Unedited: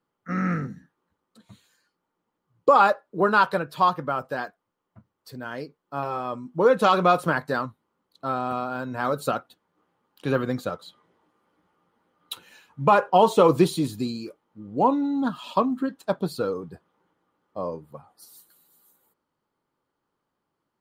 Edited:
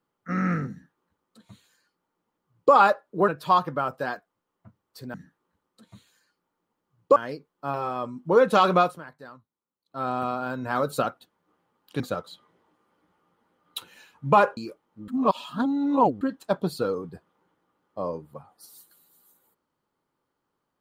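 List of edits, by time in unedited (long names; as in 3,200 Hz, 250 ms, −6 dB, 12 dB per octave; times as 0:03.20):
0:00.71–0:02.73: duplicate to 0:05.45
0:03.28–0:03.59: remove
0:07.06–0:08.38: duck −18.5 dB, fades 0.22 s
0:10.29–0:10.55: remove
0:13.12–0:14.16: remove
0:14.67–0:15.80: reverse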